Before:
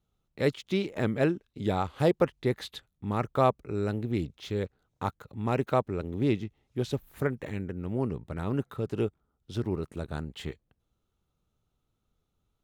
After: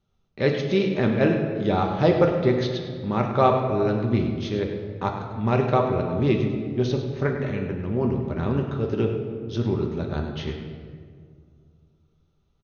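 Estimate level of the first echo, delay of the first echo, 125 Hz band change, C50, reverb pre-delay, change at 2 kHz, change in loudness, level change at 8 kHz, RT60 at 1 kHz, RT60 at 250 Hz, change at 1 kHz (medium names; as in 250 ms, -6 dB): -10.5 dB, 101 ms, +7.5 dB, 4.5 dB, 5 ms, +6.5 dB, +7.0 dB, no reading, 1.8 s, 2.8 s, +7.0 dB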